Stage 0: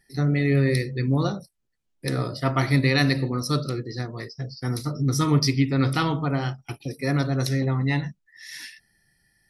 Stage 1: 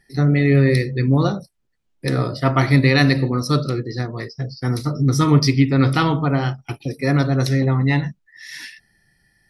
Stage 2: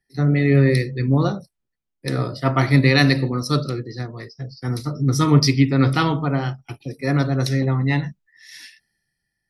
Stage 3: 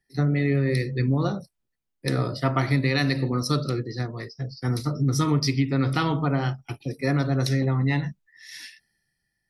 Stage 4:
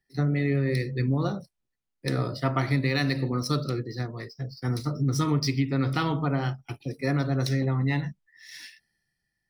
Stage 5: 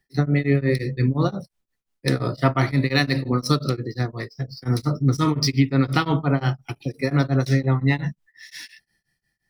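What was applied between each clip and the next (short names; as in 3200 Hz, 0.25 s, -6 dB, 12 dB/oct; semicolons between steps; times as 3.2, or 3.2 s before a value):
high shelf 5700 Hz -8 dB; gain +6 dB
three-band expander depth 40%; gain -1.5 dB
compressor 5:1, threshold -19 dBFS, peak gain reduction 10 dB
median filter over 3 samples; gain -2.5 dB
beating tremolo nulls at 5.7 Hz; gain +8 dB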